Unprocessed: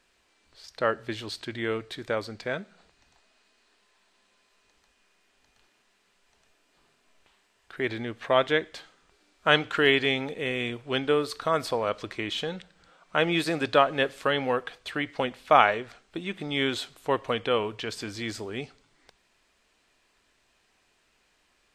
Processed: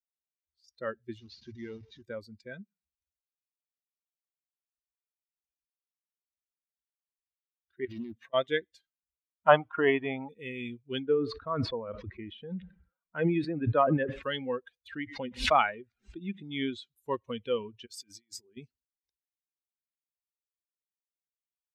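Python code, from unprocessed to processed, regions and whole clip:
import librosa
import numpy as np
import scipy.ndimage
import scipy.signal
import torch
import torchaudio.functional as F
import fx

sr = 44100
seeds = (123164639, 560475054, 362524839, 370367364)

y = fx.chain(x, sr, fx.delta_mod(bps=32000, step_db=-31.0),
    fx.high_shelf(hz=4700.0, db=-5.5),
    fx.transformer_sat(knee_hz=790.0), at=(1.18, 2.02))
y = fx.chain(y, sr, fx.highpass(hz=67.0, slope=6),
    fx.over_compress(threshold_db=-35.0, ratio=-1.0),
    fx.doppler_dist(depth_ms=0.68), at=(7.85, 8.34))
y = fx.chain(y, sr, fx.moving_average(points=9),
    fx.band_shelf(hz=850.0, db=11.0, octaves=1.3), at=(9.48, 10.29))
y = fx.chain(y, sr, fx.lowpass(hz=2000.0, slope=12),
    fx.sustainer(db_per_s=46.0), at=(11.03, 14.23))
y = fx.chain(y, sr, fx.air_absorb(metres=79.0),
    fx.pre_swell(db_per_s=100.0), at=(14.87, 16.96))
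y = fx.chain(y, sr, fx.over_compress(threshold_db=-39.0, ratio=-0.5),
    fx.highpass(hz=280.0, slope=6), at=(17.86, 18.57))
y = fx.bin_expand(y, sr, power=2.0)
y = scipy.signal.sosfilt(scipy.signal.butter(2, 49.0, 'highpass', fs=sr, output='sos'), y)
y = fx.low_shelf(y, sr, hz=210.0, db=10.0)
y = F.gain(torch.from_numpy(y), -2.0).numpy()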